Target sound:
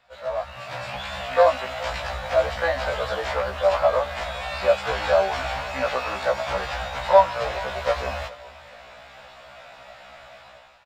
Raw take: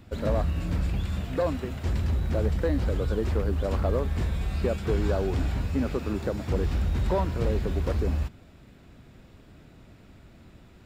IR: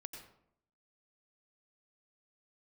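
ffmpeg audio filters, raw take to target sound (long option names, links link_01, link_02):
-filter_complex "[0:a]asettb=1/sr,asplit=3[link_01][link_02][link_03];[link_01]atrim=end=0.564[link_04];[link_02]atrim=start=0.56:end=0.97,asetpts=PTS-STARTPTS,afade=type=in:duration=0.004:curve=qsin,afade=type=out:start_time=0.406:duration=0.004:curve=qsin,afreqshift=44[link_05];[link_03]atrim=start=0.966[link_06];[link_04][link_05]acrossfade=duration=0.004:curve1=hsin:curve2=qsin[link_07];[link_07][link_06]acrossfade=duration=0.004:curve1=qsin:curve2=hsin,lowshelf=frequency=470:width_type=q:width=3:gain=-8.5,dynaudnorm=framelen=250:gausssize=5:maxgain=16.5dB,acrossover=split=590 5900:gain=0.158 1 0.224[link_08][link_09][link_10];[link_08][link_09][link_10]amix=inputs=3:normalize=0,aecho=1:1:421|842|1263:0.1|0.045|0.0202,afftfilt=real='re*1.73*eq(mod(b,3),0)':imag='im*1.73*eq(mod(b,3),0)':win_size=2048:overlap=0.75,volume=1.5dB"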